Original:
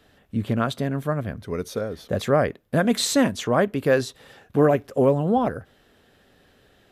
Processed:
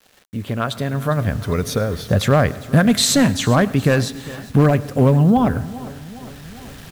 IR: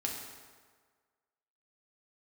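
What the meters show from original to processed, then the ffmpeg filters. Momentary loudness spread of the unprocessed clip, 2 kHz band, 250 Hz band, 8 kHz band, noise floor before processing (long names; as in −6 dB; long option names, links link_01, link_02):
10 LU, +5.5 dB, +6.5 dB, +8.0 dB, −59 dBFS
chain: -filter_complex "[0:a]asplit=2[link_01][link_02];[link_02]acompressor=threshold=-27dB:ratio=5,volume=1dB[link_03];[link_01][link_03]amix=inputs=2:normalize=0,volume=9dB,asoftclip=hard,volume=-9dB,lowshelf=frequency=230:gain=-9,aecho=1:1:405|810|1215|1620|2025:0.119|0.0642|0.0347|0.0187|0.0101,asplit=2[link_04][link_05];[1:a]atrim=start_sample=2205,adelay=104[link_06];[link_05][link_06]afir=irnorm=-1:irlink=0,volume=-20.5dB[link_07];[link_04][link_07]amix=inputs=2:normalize=0,asubboost=boost=9.5:cutoff=150,acrusher=bits=7:mix=0:aa=0.000001,dynaudnorm=framelen=440:gausssize=5:maxgain=11.5dB,volume=-1dB"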